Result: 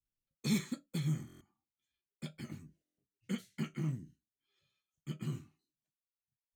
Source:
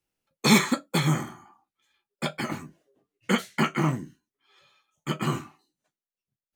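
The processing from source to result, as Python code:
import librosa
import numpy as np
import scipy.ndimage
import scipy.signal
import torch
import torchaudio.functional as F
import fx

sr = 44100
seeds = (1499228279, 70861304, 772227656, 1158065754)

y = fx.tone_stack(x, sr, knobs='10-0-1')
y = fx.buffer_glitch(y, sr, at_s=(1.27, 2.84), block=1024, repeats=5)
y = y * 10.0 ** (4.5 / 20.0)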